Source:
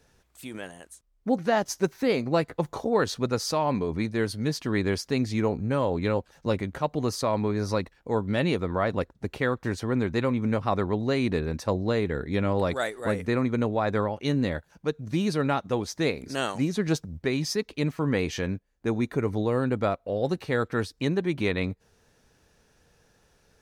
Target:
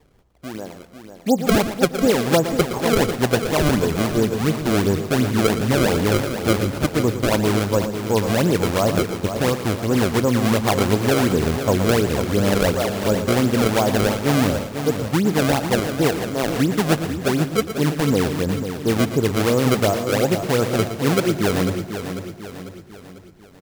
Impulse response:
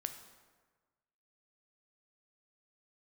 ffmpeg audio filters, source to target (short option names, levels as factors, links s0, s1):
-filter_complex "[0:a]lowpass=f=1100:w=0.5412,lowpass=f=1100:w=1.3066,acrusher=samples=28:mix=1:aa=0.000001:lfo=1:lforange=44.8:lforate=2.8,aecho=1:1:496|992|1488|1984|2480:0.355|0.17|0.0817|0.0392|0.0188,asplit=2[s0][s1];[1:a]atrim=start_sample=2205,adelay=116[s2];[s1][s2]afir=irnorm=-1:irlink=0,volume=0.355[s3];[s0][s3]amix=inputs=2:normalize=0,volume=2.24"